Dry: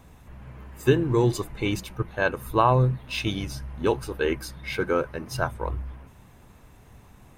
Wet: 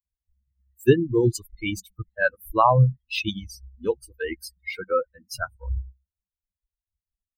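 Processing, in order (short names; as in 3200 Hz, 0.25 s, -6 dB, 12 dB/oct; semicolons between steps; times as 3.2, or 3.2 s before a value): per-bin expansion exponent 3; gain +6.5 dB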